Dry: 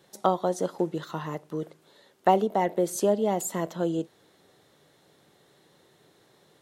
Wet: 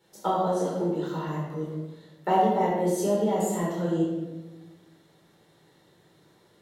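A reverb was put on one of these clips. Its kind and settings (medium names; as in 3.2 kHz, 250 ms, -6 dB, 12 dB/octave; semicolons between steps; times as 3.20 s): simulated room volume 590 m³, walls mixed, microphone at 4.4 m; trim -10 dB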